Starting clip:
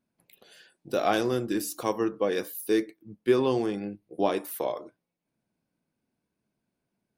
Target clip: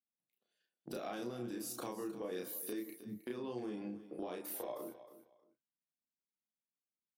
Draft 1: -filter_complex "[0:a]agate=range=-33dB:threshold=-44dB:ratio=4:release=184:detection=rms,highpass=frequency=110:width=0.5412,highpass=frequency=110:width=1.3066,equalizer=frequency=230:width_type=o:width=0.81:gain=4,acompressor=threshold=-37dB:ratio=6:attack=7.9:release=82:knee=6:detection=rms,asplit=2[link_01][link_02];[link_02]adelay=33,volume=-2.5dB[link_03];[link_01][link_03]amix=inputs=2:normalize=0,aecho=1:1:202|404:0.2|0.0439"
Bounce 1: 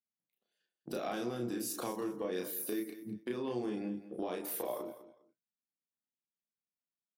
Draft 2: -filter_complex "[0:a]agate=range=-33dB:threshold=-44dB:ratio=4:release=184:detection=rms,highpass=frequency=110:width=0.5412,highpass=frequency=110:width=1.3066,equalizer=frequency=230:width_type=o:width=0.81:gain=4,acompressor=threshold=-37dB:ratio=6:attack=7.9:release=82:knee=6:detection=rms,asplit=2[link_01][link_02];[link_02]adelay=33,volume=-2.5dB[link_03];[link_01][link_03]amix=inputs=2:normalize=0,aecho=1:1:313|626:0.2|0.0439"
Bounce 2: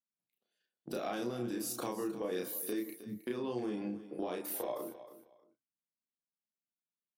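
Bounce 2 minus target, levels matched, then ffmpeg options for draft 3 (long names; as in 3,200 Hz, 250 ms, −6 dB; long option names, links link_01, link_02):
downward compressor: peak gain reduction −5 dB
-filter_complex "[0:a]agate=range=-33dB:threshold=-44dB:ratio=4:release=184:detection=rms,highpass=frequency=110:width=0.5412,highpass=frequency=110:width=1.3066,equalizer=frequency=230:width_type=o:width=0.81:gain=4,acompressor=threshold=-43dB:ratio=6:attack=7.9:release=82:knee=6:detection=rms,asplit=2[link_01][link_02];[link_02]adelay=33,volume=-2.5dB[link_03];[link_01][link_03]amix=inputs=2:normalize=0,aecho=1:1:313|626:0.2|0.0439"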